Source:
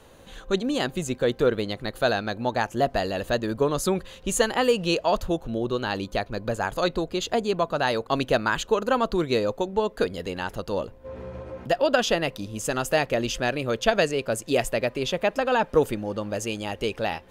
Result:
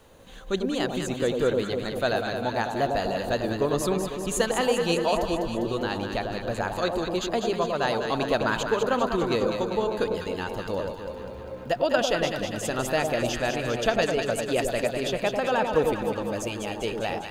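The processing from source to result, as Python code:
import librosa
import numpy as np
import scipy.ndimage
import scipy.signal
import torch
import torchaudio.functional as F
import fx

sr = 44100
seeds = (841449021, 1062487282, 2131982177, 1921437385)

y = fx.quant_dither(x, sr, seeds[0], bits=12, dither='triangular')
y = fx.echo_alternate(y, sr, ms=100, hz=1000.0, feedback_pct=80, wet_db=-4.0)
y = F.gain(torch.from_numpy(y), -3.0).numpy()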